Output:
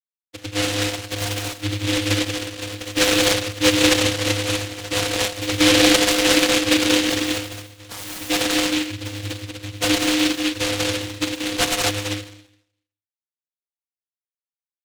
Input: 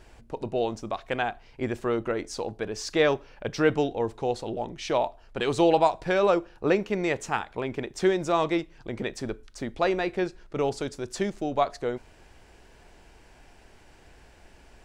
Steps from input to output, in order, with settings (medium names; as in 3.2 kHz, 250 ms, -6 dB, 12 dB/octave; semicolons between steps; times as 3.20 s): dynamic bell 810 Hz, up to +5 dB, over -33 dBFS, Q 0.7; brick-wall FIR band-stop 750–1500 Hz; 7.88–8.15 s: painted sound rise 800–5000 Hz -17 dBFS; crossover distortion -32.5 dBFS; 7.39–8.20 s: inharmonic resonator 140 Hz, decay 0.53 s, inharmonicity 0.008; on a send: loudspeakers at several distances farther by 36 m -5 dB, 63 m -3 dB, 83 m -3 dB; on the sum: Schroeder reverb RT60 0.71 s, combs from 28 ms, DRR 6 dB; vocoder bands 16, square 102 Hz; delay time shaken by noise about 2.8 kHz, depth 0.31 ms; trim +3 dB